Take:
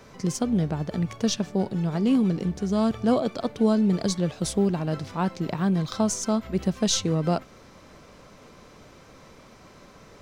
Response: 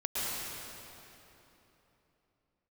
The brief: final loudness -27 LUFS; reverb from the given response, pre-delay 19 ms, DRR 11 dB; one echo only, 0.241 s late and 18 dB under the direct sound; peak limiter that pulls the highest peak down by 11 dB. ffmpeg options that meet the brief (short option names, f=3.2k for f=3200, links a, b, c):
-filter_complex "[0:a]alimiter=limit=-22dB:level=0:latency=1,aecho=1:1:241:0.126,asplit=2[a][b];[1:a]atrim=start_sample=2205,adelay=19[c];[b][c]afir=irnorm=-1:irlink=0,volume=-18.5dB[d];[a][d]amix=inputs=2:normalize=0,volume=3dB"